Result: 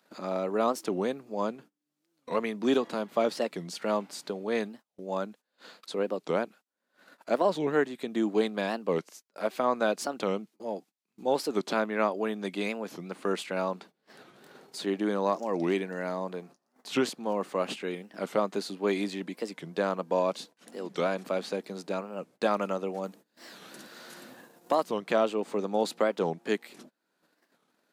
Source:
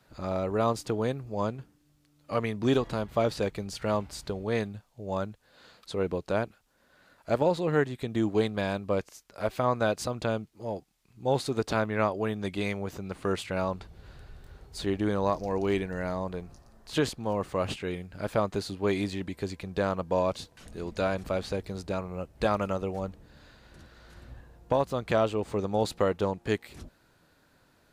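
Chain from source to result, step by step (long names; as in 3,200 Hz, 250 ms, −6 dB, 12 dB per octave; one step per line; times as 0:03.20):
Butterworth high-pass 190 Hz 36 dB per octave
upward compression, threshold −40 dBFS
0:23.03–0:24.86: high-shelf EQ 6,100 Hz +12 dB
noise gate −49 dBFS, range −23 dB
wow of a warped record 45 rpm, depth 250 cents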